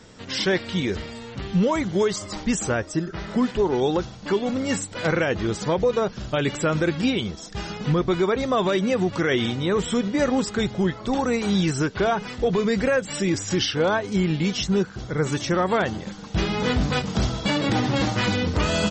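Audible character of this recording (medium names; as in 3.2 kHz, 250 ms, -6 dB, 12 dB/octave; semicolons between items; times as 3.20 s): noise floor -40 dBFS; spectral tilt -5.0 dB/octave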